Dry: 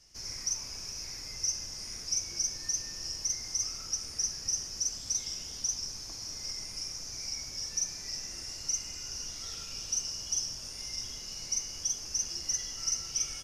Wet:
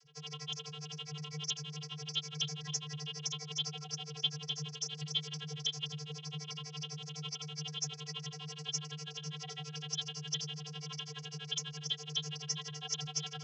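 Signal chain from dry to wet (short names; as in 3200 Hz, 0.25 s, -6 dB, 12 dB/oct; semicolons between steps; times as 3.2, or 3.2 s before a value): trilling pitch shifter -10 st, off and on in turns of 65 ms; tremolo 12 Hz, depth 98%; vocoder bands 32, square 150 Hz; gain +1 dB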